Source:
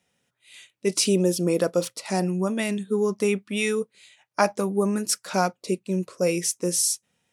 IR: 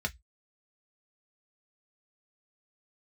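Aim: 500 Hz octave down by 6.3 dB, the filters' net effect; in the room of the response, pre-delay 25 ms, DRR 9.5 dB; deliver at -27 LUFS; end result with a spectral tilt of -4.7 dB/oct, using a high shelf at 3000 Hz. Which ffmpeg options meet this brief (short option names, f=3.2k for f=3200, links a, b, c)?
-filter_complex "[0:a]equalizer=f=500:t=o:g=-8,highshelf=f=3k:g=-7,asplit=2[a][b];[1:a]atrim=start_sample=2205,adelay=25[c];[b][c]afir=irnorm=-1:irlink=0,volume=-14dB[d];[a][d]amix=inputs=2:normalize=0,volume=1dB"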